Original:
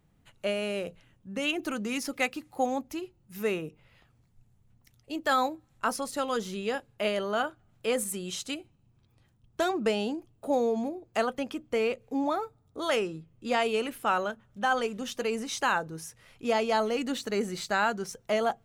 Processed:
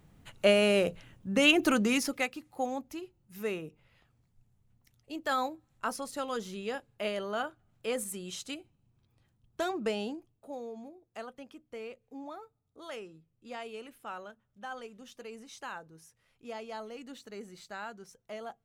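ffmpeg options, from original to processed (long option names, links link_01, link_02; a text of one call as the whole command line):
ffmpeg -i in.wav -af "volume=7dB,afade=type=out:start_time=1.75:duration=0.52:silence=0.251189,afade=type=out:start_time=10.04:duration=0.44:silence=0.316228" out.wav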